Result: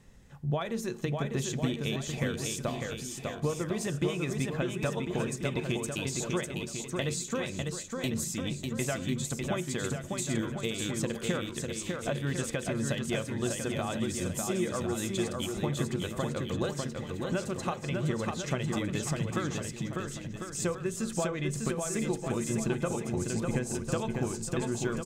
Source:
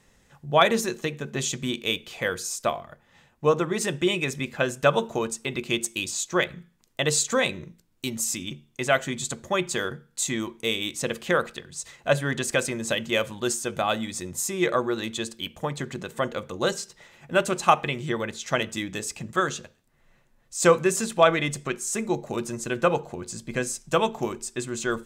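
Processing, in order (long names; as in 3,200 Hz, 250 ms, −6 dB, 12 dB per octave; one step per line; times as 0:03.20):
downward compressor 6 to 1, threshold −30 dBFS, peak gain reduction 17 dB
low-shelf EQ 300 Hz +11.5 dB
bouncing-ball delay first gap 600 ms, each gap 0.75×, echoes 5
level −3.5 dB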